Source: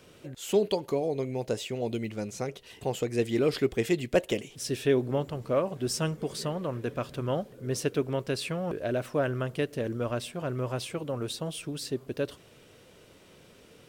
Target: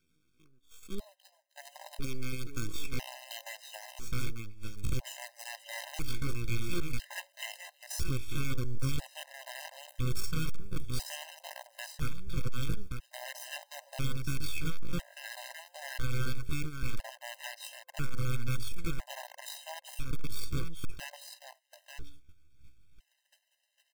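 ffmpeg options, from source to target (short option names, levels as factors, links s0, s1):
-filter_complex "[0:a]asuperstop=centerf=690:order=12:qfactor=0.67,bandreject=f=94.57:t=h:w=4,bandreject=f=189.14:t=h:w=4,bandreject=f=283.71:t=h:w=4,bandreject=f=378.28:t=h:w=4,bandreject=f=472.85:t=h:w=4,bandreject=f=567.42:t=h:w=4,bandreject=f=661.99:t=h:w=4,acompressor=threshold=0.00316:ratio=3,acrusher=bits=8:dc=4:mix=0:aa=0.000001,atempo=0.58,asubboost=boost=11.5:cutoff=66,agate=range=0.0562:threshold=0.00794:ratio=16:detection=peak,asplit=2[s0][s1];[s1]aecho=0:1:893:0.473[s2];[s0][s2]amix=inputs=2:normalize=0,volume=50.1,asoftclip=hard,volume=0.02,afftfilt=real='re*gt(sin(2*PI*0.5*pts/sr)*(1-2*mod(floor(b*sr/1024/530),2)),0)':imag='im*gt(sin(2*PI*0.5*pts/sr)*(1-2*mod(floor(b*sr/1024/530),2)),0)':win_size=1024:overlap=0.75,volume=3.98"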